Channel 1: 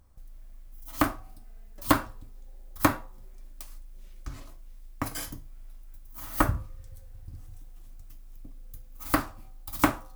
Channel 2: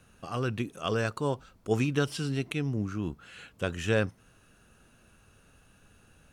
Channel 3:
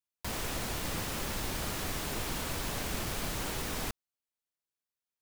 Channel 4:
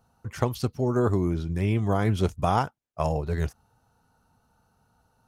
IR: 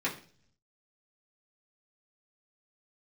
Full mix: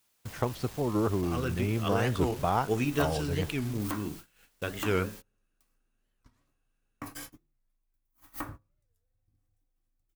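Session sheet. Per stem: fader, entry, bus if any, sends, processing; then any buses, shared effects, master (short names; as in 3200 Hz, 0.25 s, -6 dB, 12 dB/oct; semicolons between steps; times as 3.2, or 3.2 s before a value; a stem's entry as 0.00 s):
-8.0 dB, 2.00 s, send -7.5 dB, compressor 3:1, threshold -32 dBFS, peak gain reduction 13 dB
-4.0 dB, 1.00 s, send -12.5 dB, dry
-10.5 dB, 0.00 s, no send, infinite clipping
-3.5 dB, 0.00 s, no send, tone controls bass -3 dB, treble -7 dB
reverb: on, RT60 0.45 s, pre-delay 3 ms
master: gate -43 dBFS, range -22 dB; record warp 45 rpm, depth 250 cents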